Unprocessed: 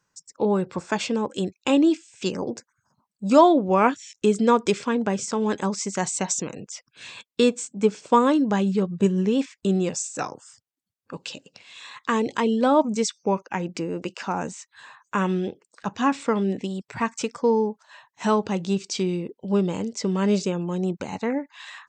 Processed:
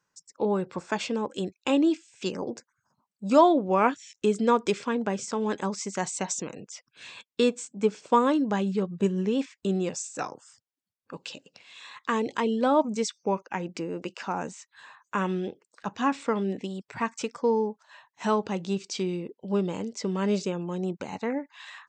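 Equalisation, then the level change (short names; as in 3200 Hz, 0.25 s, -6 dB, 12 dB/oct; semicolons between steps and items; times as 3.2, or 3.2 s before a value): low shelf 130 Hz -7.5 dB; high shelf 7100 Hz -5.5 dB; -3.0 dB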